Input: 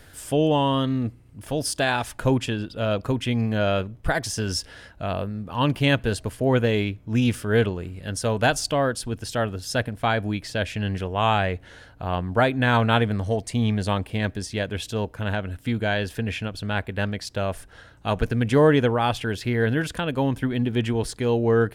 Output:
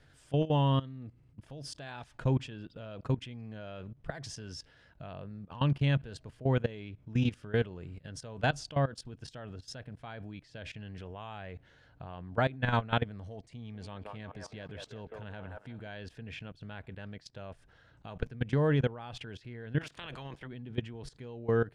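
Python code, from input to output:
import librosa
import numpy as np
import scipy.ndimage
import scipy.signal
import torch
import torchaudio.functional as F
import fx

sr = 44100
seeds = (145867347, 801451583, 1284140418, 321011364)

y = fx.echo_wet_bandpass(x, sr, ms=180, feedback_pct=53, hz=860.0, wet_db=-5.0, at=(13.56, 15.88))
y = fx.spec_clip(y, sr, under_db=22, at=(19.8, 20.46), fade=0.02)
y = scipy.signal.sosfilt(scipy.signal.butter(2, 5700.0, 'lowpass', fs=sr, output='sos'), y)
y = fx.peak_eq(y, sr, hz=140.0, db=11.0, octaves=0.25)
y = fx.level_steps(y, sr, step_db=18)
y = y * librosa.db_to_amplitude(-7.5)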